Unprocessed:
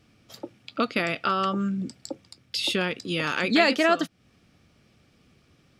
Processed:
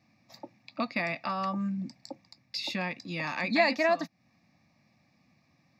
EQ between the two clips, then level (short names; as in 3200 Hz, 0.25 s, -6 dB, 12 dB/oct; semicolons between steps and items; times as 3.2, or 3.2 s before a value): HPF 170 Hz 12 dB/oct; high shelf 3300 Hz -7.5 dB; fixed phaser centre 2100 Hz, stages 8; 0.0 dB